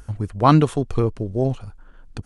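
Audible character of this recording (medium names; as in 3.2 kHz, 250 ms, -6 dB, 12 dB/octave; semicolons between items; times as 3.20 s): noise floor -47 dBFS; spectral tilt -7.5 dB/octave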